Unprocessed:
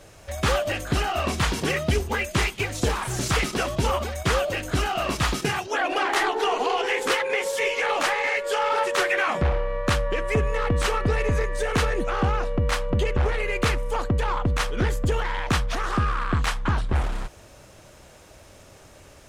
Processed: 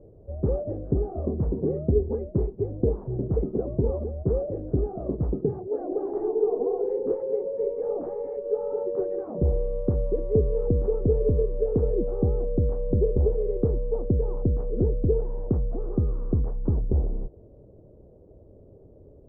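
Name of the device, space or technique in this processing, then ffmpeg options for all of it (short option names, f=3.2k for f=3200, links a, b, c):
under water: -af "lowpass=f=500:w=0.5412,lowpass=f=500:w=1.3066,equalizer=f=430:t=o:w=0.44:g=6"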